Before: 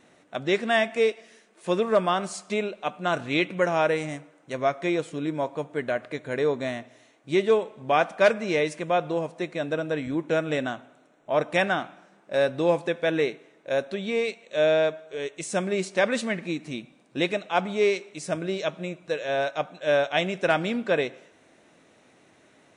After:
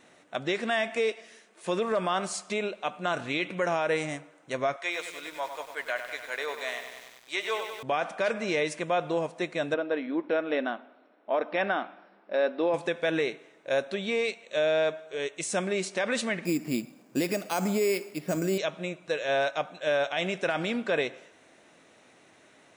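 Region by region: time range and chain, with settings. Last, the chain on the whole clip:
4.76–7.83 s: high-pass 890 Hz + bit-crushed delay 97 ms, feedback 80%, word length 8-bit, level -8.5 dB
9.74–12.74 s: brick-wall FIR band-pass 180–5600 Hz + treble shelf 2.7 kHz -10 dB
16.45–18.58 s: peaking EQ 240 Hz +8.5 dB 1.7 oct + careless resampling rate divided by 6×, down filtered, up hold
whole clip: bass shelf 420 Hz -6 dB; peak limiter -20 dBFS; trim +2 dB

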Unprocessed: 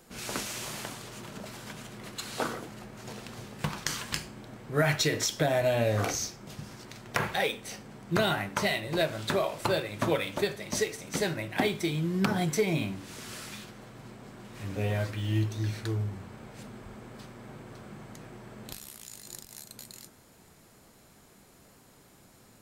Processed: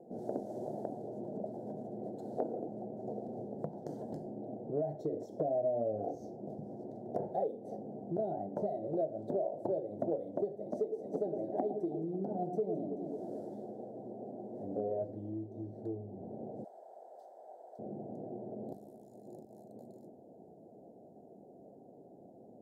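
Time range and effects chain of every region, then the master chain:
10.68–15.02 s: peaking EQ 110 Hz -7.5 dB 1.6 oct + echo whose repeats swap between lows and highs 108 ms, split 1.2 kHz, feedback 67%, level -7.5 dB
16.64–17.79 s: high-pass 690 Hz 24 dB/octave + treble shelf 2.3 kHz +9.5 dB
whole clip: elliptic low-pass 720 Hz, stop band 40 dB; compression 4:1, threshold -40 dBFS; Bessel high-pass 320 Hz, order 2; trim +9 dB

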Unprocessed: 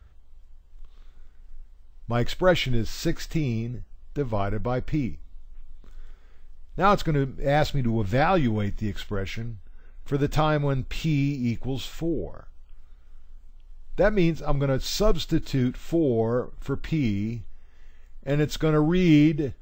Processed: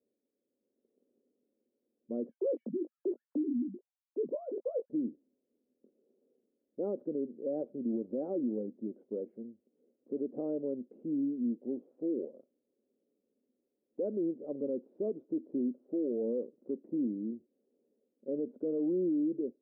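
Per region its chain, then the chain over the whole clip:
2.29–4.90 s: formants replaced by sine waves + doubling 20 ms -8 dB
whole clip: Chebyshev band-pass 230–540 Hz, order 3; peak limiter -22.5 dBFS; level rider gain up to 4 dB; trim -7.5 dB

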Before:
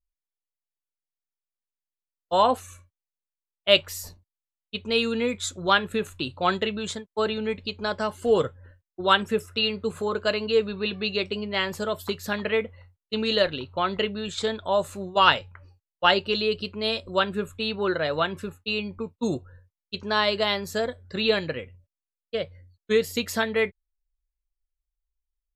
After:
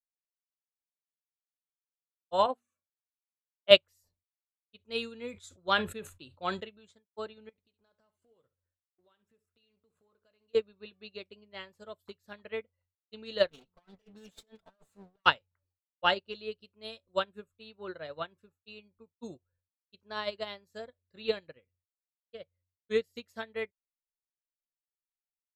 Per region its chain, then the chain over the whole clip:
2.46–3.71 s: high-pass 150 Hz 24 dB/octave + treble shelf 2.6 kHz -8 dB + hum notches 60/120/180/240/300/360 Hz
4.77–6.64 s: treble shelf 6.2 kHz +4.5 dB + decay stretcher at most 49 dB/s
7.49–10.55 s: companding laws mixed up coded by A + compression 5:1, threshold -35 dBFS + flutter echo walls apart 11.7 m, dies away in 0.26 s
13.50–15.26 s: comb filter that takes the minimum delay 4.5 ms + compressor with a negative ratio -31 dBFS, ratio -0.5
16.60–17.45 s: treble shelf 8.1 kHz +10.5 dB + band-stop 4.6 kHz
whole clip: peaking EQ 570 Hz +3 dB 0.44 oct; upward expansion 2.5:1, over -35 dBFS

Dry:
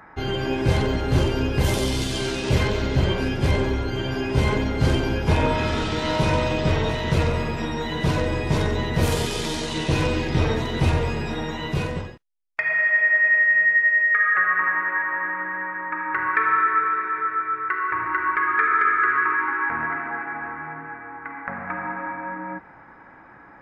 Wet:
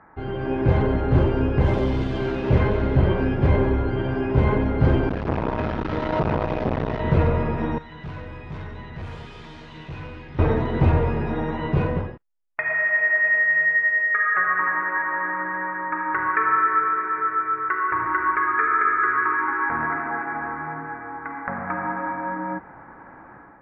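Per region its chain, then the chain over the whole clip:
5.09–7.00 s: one-bit delta coder 32 kbps, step -22.5 dBFS + transformer saturation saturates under 730 Hz
7.78–10.39 s: amplifier tone stack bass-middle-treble 5-5-5 + doubling 20 ms -12.5 dB + hard clipper -32.5 dBFS
whole clip: level rider gain up to 8 dB; low-pass 1.5 kHz 12 dB/octave; trim -3.5 dB

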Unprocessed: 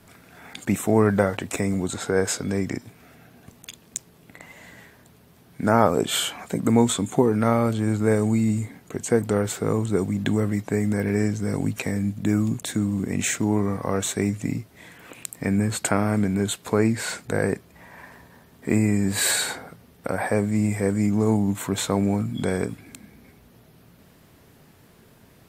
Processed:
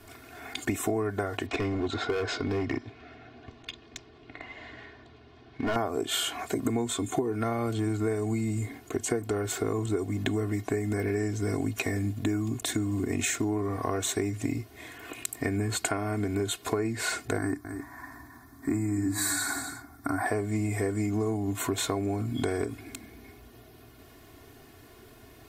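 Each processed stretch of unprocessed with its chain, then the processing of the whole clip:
1.46–5.76 s: low-pass 4.5 kHz 24 dB/octave + overload inside the chain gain 22 dB
17.38–20.26 s: peaking EQ 290 Hz +12 dB 0.26 oct + static phaser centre 1.2 kHz, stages 4 + delay 266 ms -13.5 dB
whole clip: peaking EQ 8.9 kHz -2 dB; comb 2.8 ms, depth 85%; compression 10:1, threshold -25 dBFS

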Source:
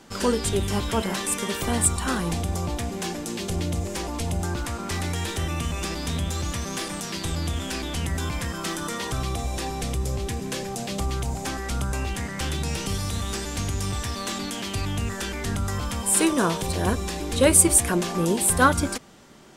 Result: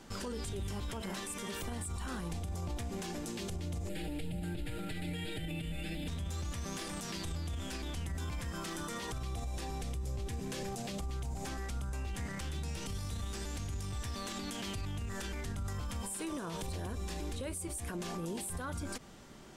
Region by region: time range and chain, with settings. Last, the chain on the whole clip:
3.89–6.08 s: one-bit delta coder 64 kbps, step -37.5 dBFS + static phaser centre 2.6 kHz, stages 4 + comb 6.5 ms, depth 91%
whole clip: bass shelf 82 Hz +10 dB; compression, threshold -25 dBFS; peak limiter -26.5 dBFS; trim -4.5 dB

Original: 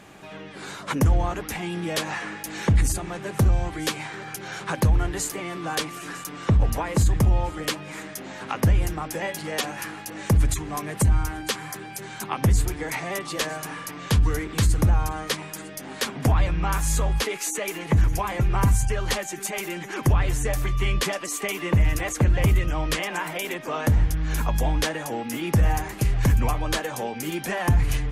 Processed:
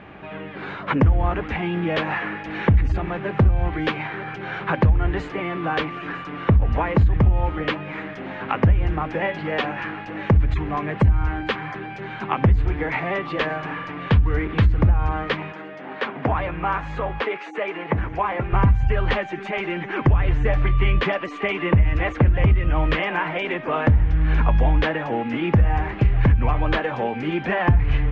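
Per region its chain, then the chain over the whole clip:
15.52–18.53 s: high-pass 850 Hz 6 dB/octave + tilt shelf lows +6 dB, about 1.5 kHz
whole clip: low-pass 2.8 kHz 24 dB/octave; peaking EQ 69 Hz +7 dB 0.55 oct; compression, threshold -18 dBFS; trim +5.5 dB

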